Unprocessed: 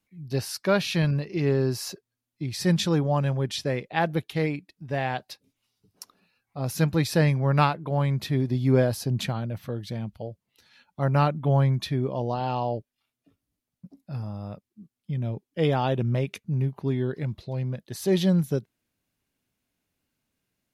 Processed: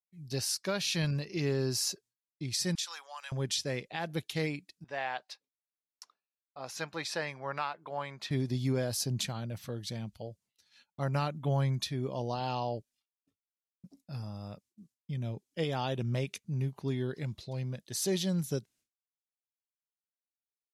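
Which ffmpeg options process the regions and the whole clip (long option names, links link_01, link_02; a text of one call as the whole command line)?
ffmpeg -i in.wav -filter_complex "[0:a]asettb=1/sr,asplit=3[link_01][link_02][link_03];[link_01]atrim=end=2.754[link_04];[link_02]atrim=start=2.75:end=3.32,asetpts=PTS-STARTPTS,afade=type=in:duration=0.004:curve=qsin,afade=type=out:start_time=0.566:duration=0.004:curve=qsin,highpass=frequency=1000:width=0.5412,highpass=frequency=1000:width=1.3066,acompressor=threshold=-36dB:ratio=2:attack=3.2:release=140:knee=1:detection=peak[link_05];[link_03]atrim=start=3.316[link_06];[link_04][link_05]acrossfade=duration=0.004:curve1=hsin:curve2=qsin[link_07];[link_07][link_06]acrossfade=duration=0.004:curve1=qsin:curve2=hsin,asettb=1/sr,asplit=3[link_08][link_09][link_10];[link_08]atrim=end=4.844[link_11];[link_09]atrim=start=4.84:end=8.31,asetpts=PTS-STARTPTS,afade=type=in:duration=0.004:curve=qsin,afade=type=out:start_time=3.466:duration=0.004:curve=qsin,bandpass=frequency=950:width_type=q:width=0.74,tiltshelf=frequency=650:gain=-4[link_12];[link_10]atrim=start=8.306[link_13];[link_11][link_12]acrossfade=duration=0.004:curve1=hsin:curve2=qsin[link_14];[link_14][link_13]acrossfade=duration=0.004:curve1=qsin:curve2=hsin,agate=range=-33dB:threshold=-52dB:ratio=3:detection=peak,equalizer=frequency=7000:width=0.53:gain=13.5,alimiter=limit=-14.5dB:level=0:latency=1:release=243,volume=-7dB" out.wav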